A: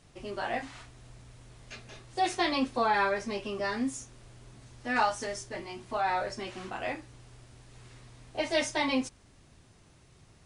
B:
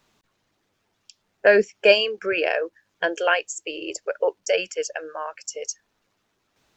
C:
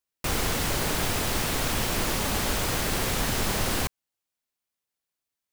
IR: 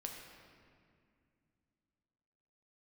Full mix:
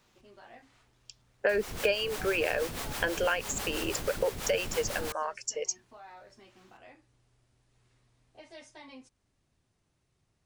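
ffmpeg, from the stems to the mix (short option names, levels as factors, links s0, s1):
-filter_complex "[0:a]acompressor=threshold=0.0158:ratio=1.5,volume=0.141[s0];[1:a]bandreject=f=670:w=12,volume=0.841[s1];[2:a]acrossover=split=470[s2][s3];[s2]aeval=exprs='val(0)*(1-0.7/2+0.7/2*cos(2*PI*6.1*n/s))':c=same[s4];[s3]aeval=exprs='val(0)*(1-0.7/2-0.7/2*cos(2*PI*6.1*n/s))':c=same[s5];[s4][s5]amix=inputs=2:normalize=0,adelay=1250,volume=0.447[s6];[s0][s1][s6]amix=inputs=3:normalize=0,acompressor=threshold=0.0562:ratio=5"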